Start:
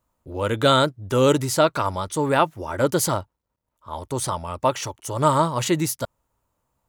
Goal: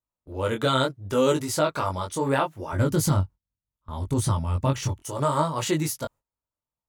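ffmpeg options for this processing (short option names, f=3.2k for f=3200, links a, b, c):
-filter_complex "[0:a]agate=range=-18dB:threshold=-42dB:ratio=16:detection=peak,asplit=3[a][b][c];[a]afade=t=out:st=2.72:d=0.02[d];[b]asubboost=boost=6.5:cutoff=230,afade=t=in:st=2.72:d=0.02,afade=t=out:st=5.01:d=0.02[e];[c]afade=t=in:st=5.01:d=0.02[f];[d][e][f]amix=inputs=3:normalize=0,alimiter=limit=-8.5dB:level=0:latency=1:release=131,flanger=delay=19:depth=3.8:speed=0.71"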